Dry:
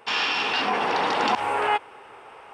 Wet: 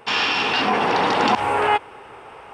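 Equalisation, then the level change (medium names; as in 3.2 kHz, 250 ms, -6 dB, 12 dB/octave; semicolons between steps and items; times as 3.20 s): bass shelf 230 Hz +9.5 dB; +3.5 dB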